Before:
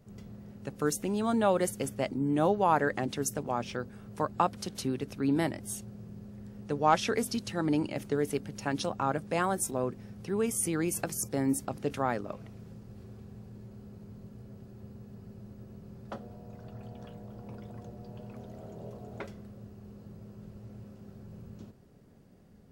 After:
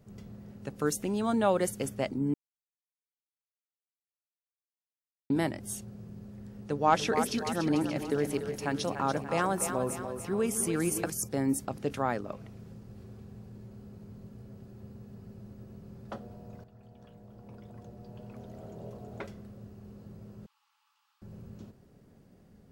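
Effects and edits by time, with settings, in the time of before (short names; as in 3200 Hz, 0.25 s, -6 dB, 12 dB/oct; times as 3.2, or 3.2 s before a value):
2.34–5.3 mute
6.52–11.1 split-band echo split 360 Hz, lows 0.153 s, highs 0.29 s, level -8 dB
16.64–18.62 fade in, from -12 dB
20.46–21.22 rippled Chebyshev high-pass 830 Hz, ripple 9 dB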